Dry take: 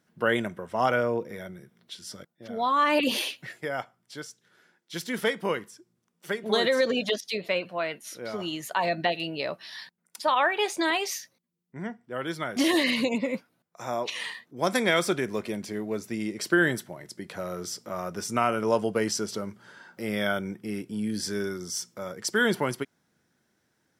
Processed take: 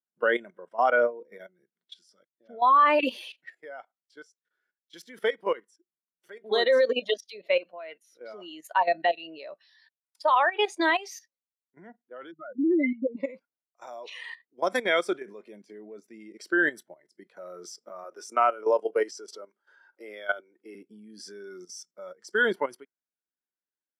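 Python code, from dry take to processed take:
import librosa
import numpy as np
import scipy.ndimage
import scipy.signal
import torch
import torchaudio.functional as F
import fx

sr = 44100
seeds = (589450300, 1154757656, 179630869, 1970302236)

y = fx.spec_expand(x, sr, power=3.5, at=(12.3, 13.16), fade=0.02)
y = fx.band_squash(y, sr, depth_pct=70, at=(13.87, 14.34))
y = fx.highpass(y, sr, hz=270.0, slope=24, at=(18.04, 20.75))
y = fx.level_steps(y, sr, step_db=13)
y = scipy.signal.sosfilt(scipy.signal.bessel(2, 390.0, 'highpass', norm='mag', fs=sr, output='sos'), y)
y = fx.spectral_expand(y, sr, expansion=1.5)
y = F.gain(torch.from_numpy(y), 4.0).numpy()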